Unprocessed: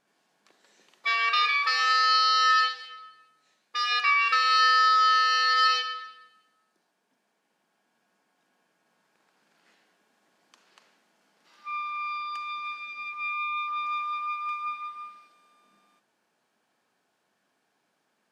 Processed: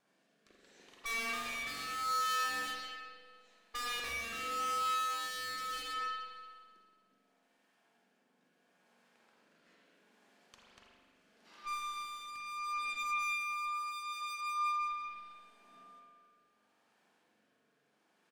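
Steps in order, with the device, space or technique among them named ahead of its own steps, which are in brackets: overdriven rotary cabinet (valve stage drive 41 dB, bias 0.75; rotary cabinet horn 0.75 Hz); 13.82–14.81 s: high-pass 230 Hz 24 dB/octave; feedback delay 80 ms, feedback 53%, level -14 dB; spring tank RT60 1.6 s, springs 42 ms, chirp 20 ms, DRR -1.5 dB; trim +3.5 dB

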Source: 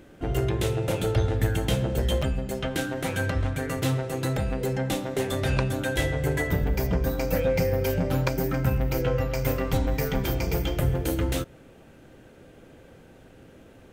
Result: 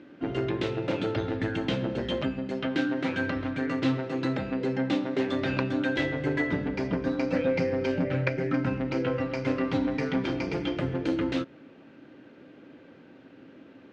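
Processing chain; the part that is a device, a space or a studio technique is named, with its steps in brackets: 8.04–8.51 s: graphic EQ 125/250/500/1000/2000/4000/8000 Hz +7/-11/+6/-10/+9/-6/-6 dB; kitchen radio (cabinet simulation 190–4400 Hz, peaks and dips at 280 Hz +8 dB, 460 Hz -4 dB, 730 Hz -5 dB, 3.4 kHz -3 dB)

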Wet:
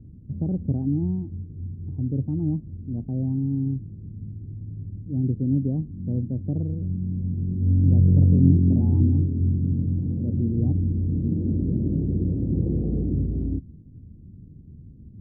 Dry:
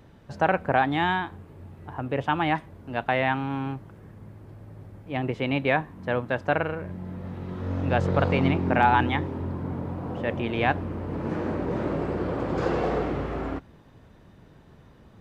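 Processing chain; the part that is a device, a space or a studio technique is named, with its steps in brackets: the neighbour's flat through the wall (low-pass 270 Hz 24 dB/octave; peaking EQ 85 Hz +5 dB 0.75 oct); trim +7 dB

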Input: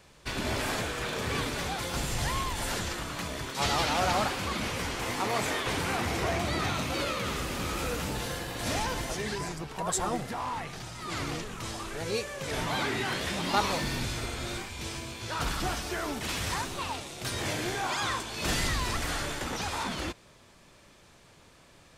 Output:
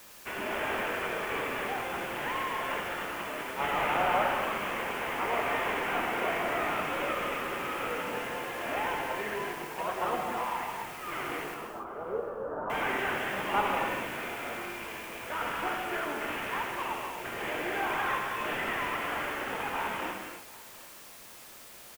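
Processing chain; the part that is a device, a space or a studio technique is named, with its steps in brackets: army field radio (band-pass 380–3300 Hz; CVSD coder 16 kbps; white noise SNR 17 dB); 11.54–12.70 s: elliptic low-pass 1.4 kHz, stop band 40 dB; feedback delay 749 ms, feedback 25%, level -22 dB; gated-style reverb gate 320 ms flat, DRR 1 dB

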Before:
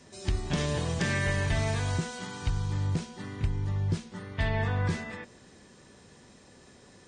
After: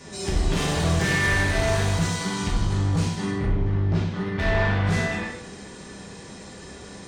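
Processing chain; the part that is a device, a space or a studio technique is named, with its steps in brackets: 3.29–4.81 s: low-pass 2.2 kHz -> 5.2 kHz 12 dB/octave; saturation between pre-emphasis and de-emphasis (treble shelf 6.7 kHz +9.5 dB; saturation -32.5 dBFS, distortion -8 dB; treble shelf 6.7 kHz -9.5 dB); gated-style reverb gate 260 ms falling, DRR -4 dB; trim +8.5 dB

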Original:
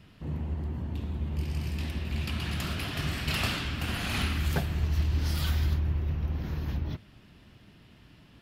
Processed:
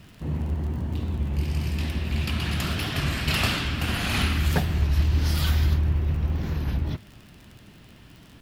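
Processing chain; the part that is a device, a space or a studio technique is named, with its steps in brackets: warped LP (warped record 33 1/3 rpm, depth 100 cents; crackle 39 per s -42 dBFS; pink noise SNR 37 dB); trim +5.5 dB

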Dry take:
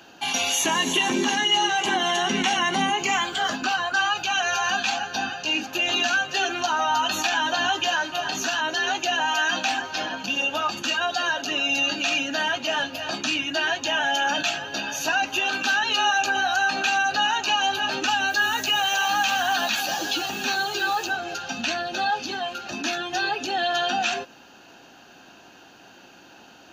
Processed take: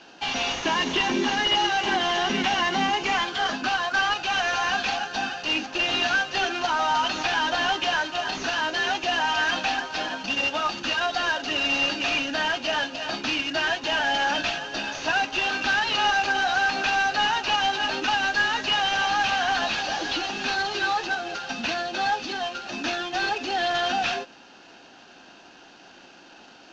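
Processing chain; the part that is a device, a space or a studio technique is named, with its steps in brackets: early wireless headset (high-pass 160 Hz 12 dB/octave; CVSD coder 32 kbps)

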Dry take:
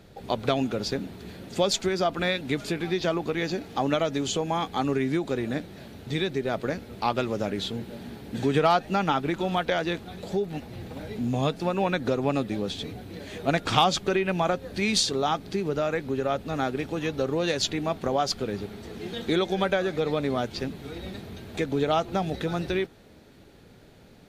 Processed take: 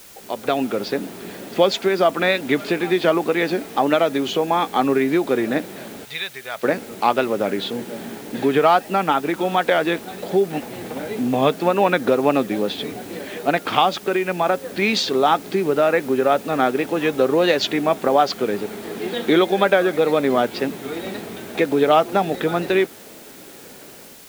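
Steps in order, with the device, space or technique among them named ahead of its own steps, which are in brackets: dictaphone (band-pass 260–3100 Hz; level rider gain up to 13 dB; wow and flutter; white noise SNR 24 dB); 6.05–6.63 s: amplifier tone stack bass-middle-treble 10-0-10; trim -1 dB

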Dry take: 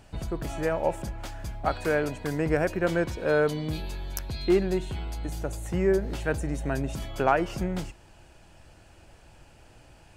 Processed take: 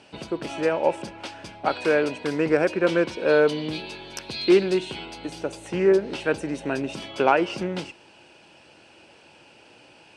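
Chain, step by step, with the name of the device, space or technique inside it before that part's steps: full-range speaker at full volume (loudspeaker Doppler distortion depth 0.14 ms; cabinet simulation 280–8200 Hz, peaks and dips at 690 Hz -6 dB, 1.2 kHz -5 dB, 1.8 kHz -5 dB, 2.7 kHz +5 dB, 7 kHz -10 dB); 4.21–5.06 s: treble shelf 3.9 kHz +6 dB; trim +7 dB

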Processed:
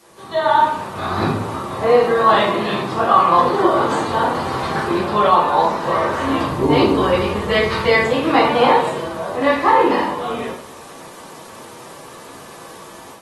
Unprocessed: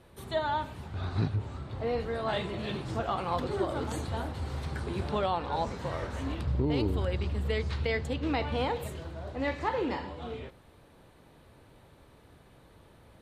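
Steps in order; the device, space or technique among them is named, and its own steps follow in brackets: filmed off a television (band-pass 230–7100 Hz; peaking EQ 1.1 kHz +10.5 dB 0.47 oct; reverberation RT60 0.60 s, pre-delay 8 ms, DRR -5.5 dB; white noise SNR 28 dB; level rider gain up to 10.5 dB; AAC 32 kbps 48 kHz)

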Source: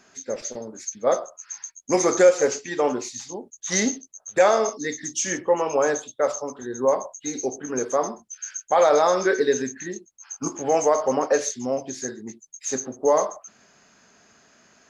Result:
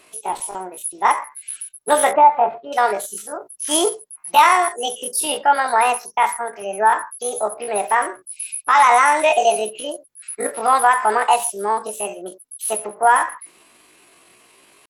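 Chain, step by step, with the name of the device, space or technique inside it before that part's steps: 2.12–2.74 s: Bessel low-pass 750 Hz, order 4; chipmunk voice (pitch shift +8.5 st); trim +5 dB

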